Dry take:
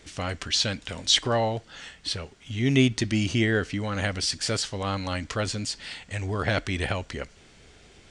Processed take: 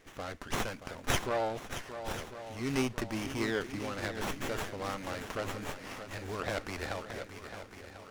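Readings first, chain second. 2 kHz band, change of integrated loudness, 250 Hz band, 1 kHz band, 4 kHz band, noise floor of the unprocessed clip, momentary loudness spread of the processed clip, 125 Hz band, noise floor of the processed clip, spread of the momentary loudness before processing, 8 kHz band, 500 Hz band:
-7.5 dB, -10.0 dB, -9.5 dB, -4.5 dB, -15.0 dB, -54 dBFS, 10 LU, -13.0 dB, -51 dBFS, 13 LU, -11.5 dB, -6.0 dB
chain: tone controls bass -8 dB, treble +2 dB; shuffle delay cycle 1044 ms, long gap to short 1.5:1, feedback 48%, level -10.5 dB; sliding maximum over 9 samples; trim -6 dB

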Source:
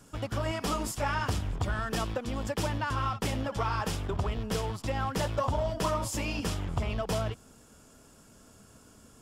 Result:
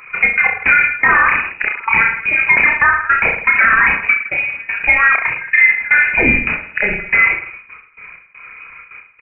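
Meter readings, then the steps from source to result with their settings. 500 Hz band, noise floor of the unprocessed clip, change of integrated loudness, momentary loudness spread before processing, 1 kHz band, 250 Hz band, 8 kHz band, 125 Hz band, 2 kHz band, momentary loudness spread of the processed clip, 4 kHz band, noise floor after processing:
+4.0 dB, -57 dBFS, +20.0 dB, 3 LU, +14.5 dB, +6.5 dB, under -40 dB, -2.5 dB, +30.0 dB, 8 LU, no reading, -44 dBFS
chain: resonances exaggerated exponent 1.5; high-pass 230 Hz 24 dB/octave; peaking EQ 2.1 kHz +6 dB 0.69 oct; trance gate "xxx.x..xx..xx" 160 bpm -24 dB; on a send: reverse bouncing-ball echo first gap 30 ms, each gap 1.2×, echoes 5; on the sum: frequency inversion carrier 2.7 kHz; loudness maximiser +24 dB; trim -1 dB

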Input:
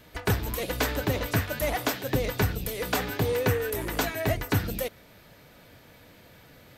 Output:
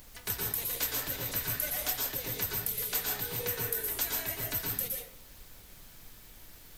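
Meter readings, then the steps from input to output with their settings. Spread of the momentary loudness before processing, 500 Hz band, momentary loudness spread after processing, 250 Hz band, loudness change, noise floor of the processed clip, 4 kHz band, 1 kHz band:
4 LU, -13.5 dB, 21 LU, -15.0 dB, -3.0 dB, -53 dBFS, -3.0 dB, -11.0 dB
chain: plate-style reverb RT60 0.56 s, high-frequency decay 0.55×, pre-delay 105 ms, DRR -1.5 dB; added noise brown -33 dBFS; pre-emphasis filter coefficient 0.9

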